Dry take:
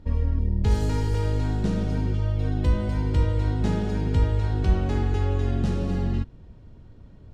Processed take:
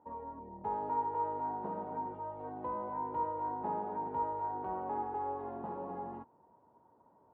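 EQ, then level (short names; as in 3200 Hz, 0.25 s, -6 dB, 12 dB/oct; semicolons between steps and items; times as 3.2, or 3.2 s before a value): HPF 390 Hz 12 dB/oct; synth low-pass 930 Hz, resonance Q 7.9; air absorption 200 m; -9.0 dB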